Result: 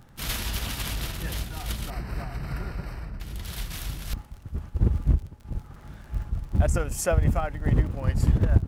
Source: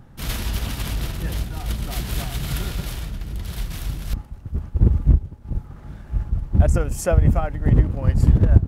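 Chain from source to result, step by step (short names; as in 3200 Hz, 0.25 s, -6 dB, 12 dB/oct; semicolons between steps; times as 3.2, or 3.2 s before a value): tilt shelf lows -3.5 dB, about 710 Hz; crackle 37/s -35 dBFS; 1.9–3.2 running mean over 13 samples; gain -3 dB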